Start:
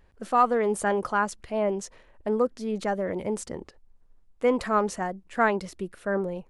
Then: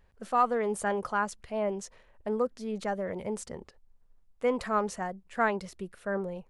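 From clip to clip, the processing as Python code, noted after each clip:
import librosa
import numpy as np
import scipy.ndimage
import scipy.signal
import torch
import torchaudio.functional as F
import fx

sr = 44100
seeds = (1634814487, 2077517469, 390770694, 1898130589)

y = fx.peak_eq(x, sr, hz=310.0, db=-8.5, octaves=0.33)
y = y * 10.0 ** (-4.0 / 20.0)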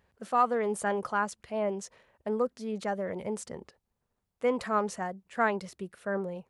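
y = scipy.signal.sosfilt(scipy.signal.butter(2, 88.0, 'highpass', fs=sr, output='sos'), x)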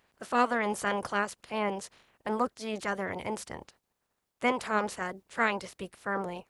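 y = fx.spec_clip(x, sr, under_db=18)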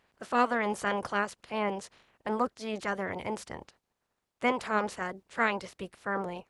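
y = fx.high_shelf(x, sr, hz=9800.0, db=-10.5)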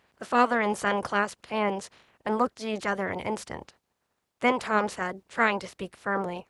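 y = scipy.signal.sosfilt(scipy.signal.butter(2, 44.0, 'highpass', fs=sr, output='sos'), x)
y = y * 10.0 ** (4.0 / 20.0)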